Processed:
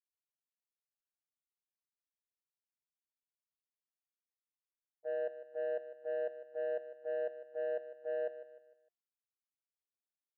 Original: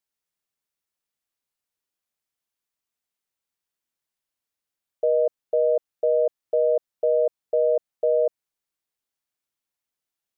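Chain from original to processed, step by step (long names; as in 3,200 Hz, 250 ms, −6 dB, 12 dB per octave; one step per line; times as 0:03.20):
noise gate −18 dBFS, range −40 dB
parametric band 370 Hz −8.5 dB 0.43 octaves
soft clipping −26.5 dBFS, distortion −17 dB
tuned comb filter 350 Hz, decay 0.41 s, mix 60%
repeating echo 152 ms, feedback 40%, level −13 dB
level +3.5 dB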